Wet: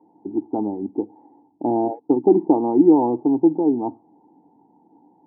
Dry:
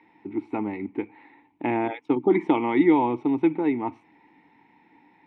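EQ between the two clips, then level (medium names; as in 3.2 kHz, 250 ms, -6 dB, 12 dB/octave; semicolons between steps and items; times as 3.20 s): high-pass 190 Hz 6 dB/octave; elliptic low-pass 800 Hz, stop band 80 dB; +6.5 dB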